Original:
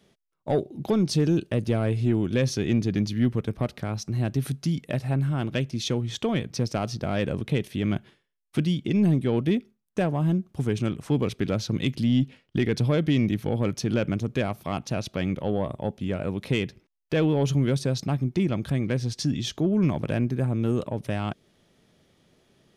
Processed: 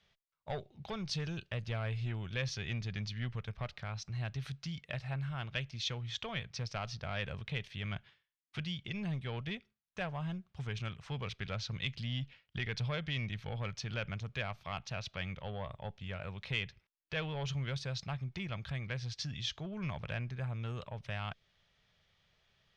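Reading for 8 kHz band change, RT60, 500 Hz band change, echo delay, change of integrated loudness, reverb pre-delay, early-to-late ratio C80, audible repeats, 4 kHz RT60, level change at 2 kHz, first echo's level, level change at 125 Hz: −11.5 dB, no reverb audible, −17.0 dB, no echo audible, −13.5 dB, no reverb audible, no reverb audible, no echo audible, no reverb audible, −4.5 dB, no echo audible, −12.0 dB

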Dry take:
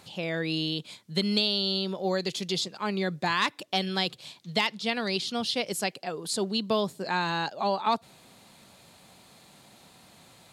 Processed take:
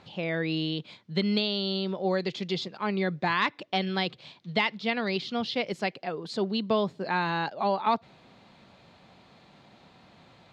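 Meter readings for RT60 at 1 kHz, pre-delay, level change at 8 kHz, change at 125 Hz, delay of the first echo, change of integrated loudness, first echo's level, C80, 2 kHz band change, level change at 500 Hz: no reverb audible, no reverb audible, below −15 dB, +1.5 dB, no echo audible, −0.5 dB, no echo audible, no reverb audible, +0.5 dB, +1.0 dB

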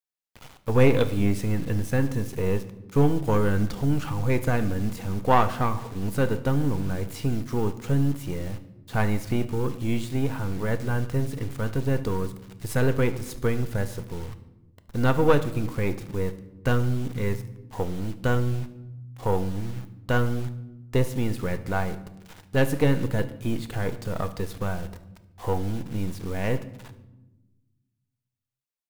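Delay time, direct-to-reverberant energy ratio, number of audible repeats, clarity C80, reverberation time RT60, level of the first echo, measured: 73 ms, 9.5 dB, 1, 16.5 dB, 1.1 s, −20.0 dB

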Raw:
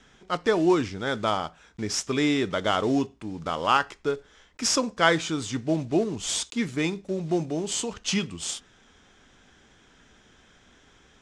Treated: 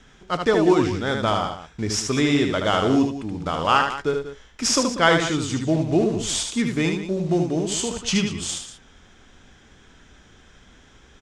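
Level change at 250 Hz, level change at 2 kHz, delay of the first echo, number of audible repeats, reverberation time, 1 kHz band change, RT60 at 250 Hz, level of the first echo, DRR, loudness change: +5.0 dB, +4.0 dB, 76 ms, 2, no reverb audible, +4.0 dB, no reverb audible, −5.0 dB, no reverb audible, +4.5 dB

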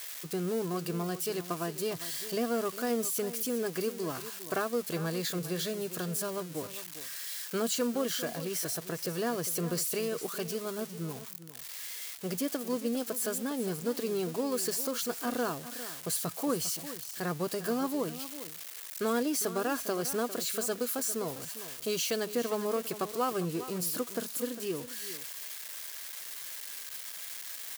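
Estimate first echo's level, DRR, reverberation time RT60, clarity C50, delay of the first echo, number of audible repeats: −13.5 dB, no reverb audible, no reverb audible, no reverb audible, 402 ms, 1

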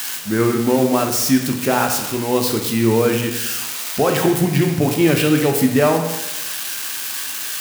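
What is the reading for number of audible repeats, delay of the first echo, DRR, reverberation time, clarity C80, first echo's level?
no echo audible, no echo audible, 3.0 dB, 1.0 s, 8.0 dB, no echo audible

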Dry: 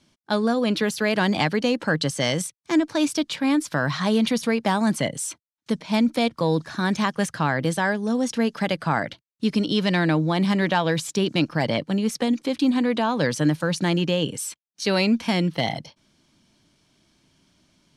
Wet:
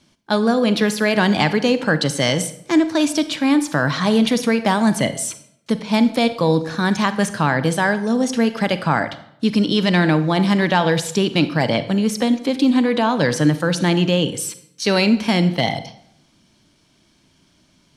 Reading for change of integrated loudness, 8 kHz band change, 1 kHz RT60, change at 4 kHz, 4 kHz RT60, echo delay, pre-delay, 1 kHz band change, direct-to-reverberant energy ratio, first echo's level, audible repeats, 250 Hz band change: +5.0 dB, +4.5 dB, 0.70 s, +5.0 dB, 0.55 s, no echo audible, 34 ms, +5.0 dB, 11.5 dB, no echo audible, no echo audible, +5.0 dB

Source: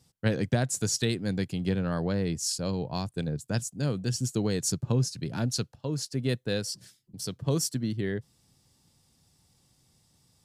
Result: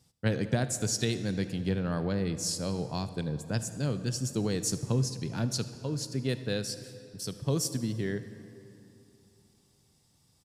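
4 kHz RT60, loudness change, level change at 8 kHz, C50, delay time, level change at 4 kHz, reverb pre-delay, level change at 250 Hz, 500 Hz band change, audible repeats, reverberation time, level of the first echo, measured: 1.9 s, −1.5 dB, −2.0 dB, 11.5 dB, 76 ms, −1.5 dB, 33 ms, −1.5 dB, −1.5 dB, 1, 2.9 s, −21.5 dB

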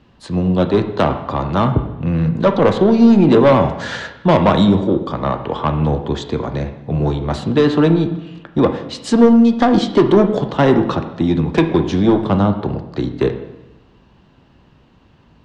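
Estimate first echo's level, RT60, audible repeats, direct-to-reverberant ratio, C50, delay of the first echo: no echo audible, 0.95 s, no echo audible, 6.5 dB, 9.5 dB, no echo audible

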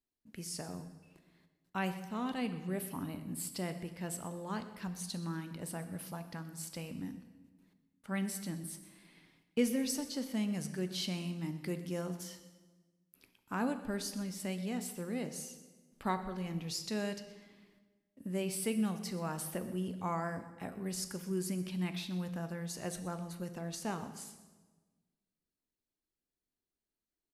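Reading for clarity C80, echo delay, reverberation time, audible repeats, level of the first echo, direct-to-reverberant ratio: 12.0 dB, 125 ms, 1.3 s, 1, −18.0 dB, 8.5 dB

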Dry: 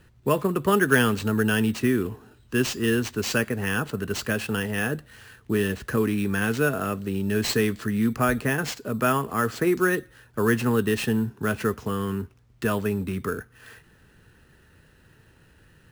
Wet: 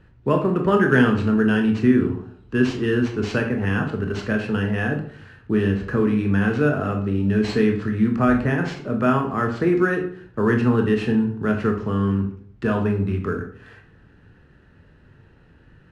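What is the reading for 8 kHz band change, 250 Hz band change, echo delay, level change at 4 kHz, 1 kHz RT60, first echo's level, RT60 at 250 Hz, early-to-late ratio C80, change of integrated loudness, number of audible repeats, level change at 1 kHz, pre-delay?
below −10 dB, +5.5 dB, no echo audible, −4.5 dB, 0.50 s, no echo audible, 0.65 s, 12.5 dB, +4.0 dB, no echo audible, +2.0 dB, 19 ms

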